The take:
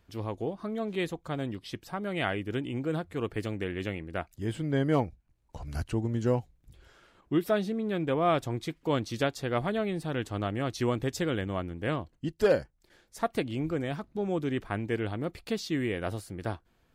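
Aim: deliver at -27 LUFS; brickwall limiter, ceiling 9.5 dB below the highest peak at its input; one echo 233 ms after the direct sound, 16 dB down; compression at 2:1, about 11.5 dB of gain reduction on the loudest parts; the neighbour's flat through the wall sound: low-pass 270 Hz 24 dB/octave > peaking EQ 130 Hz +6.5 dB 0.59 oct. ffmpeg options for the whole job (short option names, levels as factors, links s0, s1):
-af "acompressor=threshold=0.00891:ratio=2,alimiter=level_in=2.82:limit=0.0631:level=0:latency=1,volume=0.355,lowpass=f=270:w=0.5412,lowpass=f=270:w=1.3066,equalizer=f=130:t=o:w=0.59:g=6.5,aecho=1:1:233:0.158,volume=7.08"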